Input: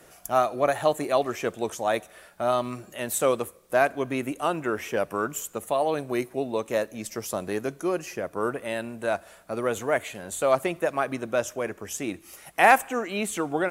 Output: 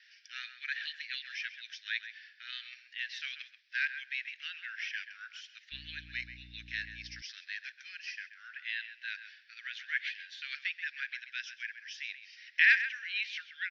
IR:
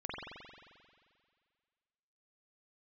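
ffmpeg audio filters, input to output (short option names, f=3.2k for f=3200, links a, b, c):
-filter_complex "[0:a]asuperpass=centerf=3000:order=20:qfactor=0.77,asplit=2[a][b];[b]adelay=132,lowpass=f=2.6k:p=1,volume=-9.5dB,asplit=2[c][d];[d]adelay=132,lowpass=f=2.6k:p=1,volume=0.16[e];[a][c][e]amix=inputs=3:normalize=0,asettb=1/sr,asplit=3[f][g][h];[f]atrim=end=5.724[i];[g]atrim=start=5.72:end=7.22,asetpts=PTS-STARTPTS,afade=t=in:d=0.004:c=qsin,afade=t=out:st=1.496:d=0.004:c=qsin,aeval=exprs='val(0)+0.00251*(sin(2*PI*60*n/s)+sin(2*PI*2*60*n/s)/2+sin(2*PI*3*60*n/s)/3+sin(2*PI*4*60*n/s)/4+sin(2*PI*5*60*n/s)/5)':c=same[j];[h]atrim=start=7.216[k];[i][j]acrossfade=d=0.004:c1=hsin:c2=qsin[l];[l][k]acrossfade=d=0.004:c1=qsin:c2=hsin"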